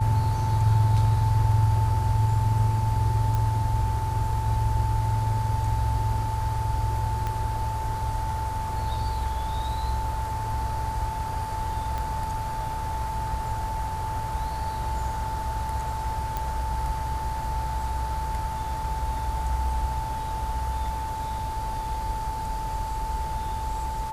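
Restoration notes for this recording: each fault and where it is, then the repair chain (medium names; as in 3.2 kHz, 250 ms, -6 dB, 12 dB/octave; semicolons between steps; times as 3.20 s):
whine 880 Hz -30 dBFS
3.35 s: pop
7.27 s: pop -17 dBFS
11.98 s: pop -18 dBFS
16.37 s: pop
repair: de-click; band-stop 880 Hz, Q 30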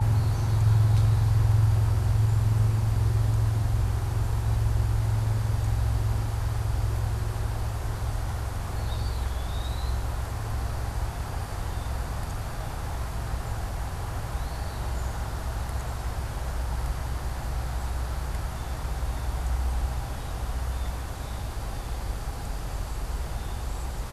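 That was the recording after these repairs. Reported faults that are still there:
7.27 s: pop
11.98 s: pop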